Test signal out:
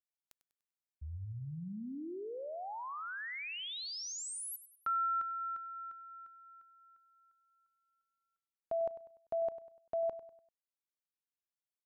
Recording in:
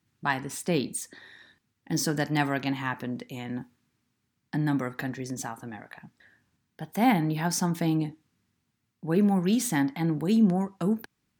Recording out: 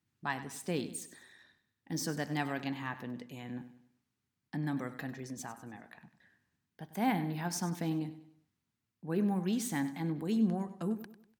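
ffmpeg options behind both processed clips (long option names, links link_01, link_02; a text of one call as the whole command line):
ffmpeg -i in.wav -af "aecho=1:1:98|196|294|392:0.2|0.0818|0.0335|0.0138,volume=-8.5dB" out.wav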